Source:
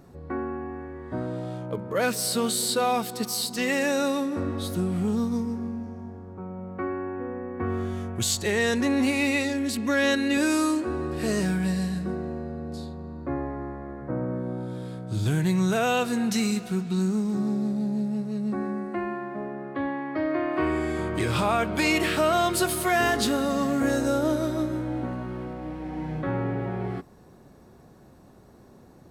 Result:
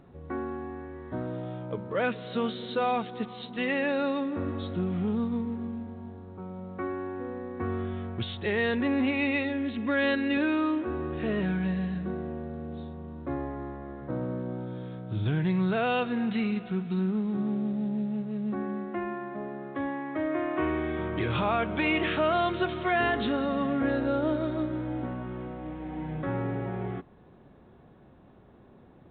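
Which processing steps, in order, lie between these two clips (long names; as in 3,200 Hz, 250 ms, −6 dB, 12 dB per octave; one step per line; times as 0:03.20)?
level −3 dB
mu-law 64 kbit/s 8,000 Hz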